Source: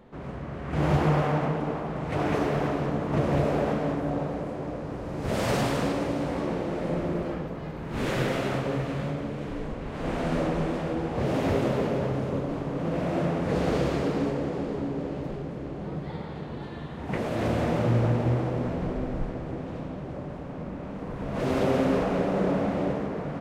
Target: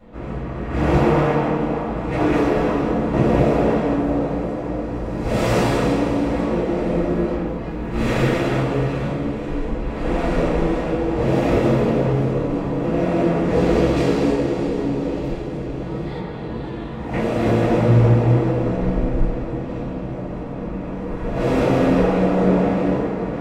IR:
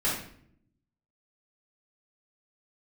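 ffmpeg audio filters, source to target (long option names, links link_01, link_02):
-filter_complex "[1:a]atrim=start_sample=2205,afade=type=out:start_time=0.19:duration=0.01,atrim=end_sample=8820,asetrate=66150,aresample=44100[link_01];[0:a][link_01]afir=irnorm=-1:irlink=0,asplit=3[link_02][link_03][link_04];[link_02]afade=type=out:start_time=13.96:duration=0.02[link_05];[link_03]adynamicequalizer=threshold=0.00708:dfrequency=2600:dqfactor=0.7:tfrequency=2600:tqfactor=0.7:attack=5:release=100:ratio=0.375:range=3.5:mode=boostabove:tftype=highshelf,afade=type=in:start_time=13.96:duration=0.02,afade=type=out:start_time=16.19:duration=0.02[link_06];[link_04]afade=type=in:start_time=16.19:duration=0.02[link_07];[link_05][link_06][link_07]amix=inputs=3:normalize=0"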